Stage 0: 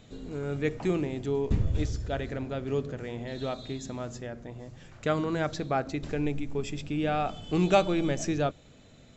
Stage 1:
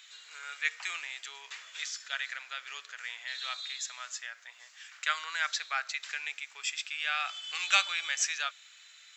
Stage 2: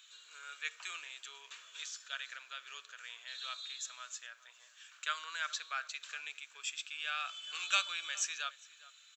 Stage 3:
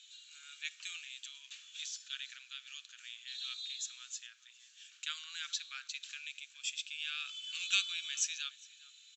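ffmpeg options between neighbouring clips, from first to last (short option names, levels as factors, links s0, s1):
-af "highpass=f=1500:w=0.5412,highpass=f=1500:w=1.3066,volume=2.66"
-filter_complex "[0:a]equalizer=f=800:t=o:w=0.33:g=-10,equalizer=f=2000:t=o:w=0.33:g=-12,equalizer=f=5000:t=o:w=0.33:g=-7,asplit=2[s0][s1];[s1]adelay=408.2,volume=0.126,highshelf=f=4000:g=-9.18[s2];[s0][s2]amix=inputs=2:normalize=0,volume=0.668"
-af "asuperpass=centerf=4600:order=4:qfactor=0.86,volume=1.33"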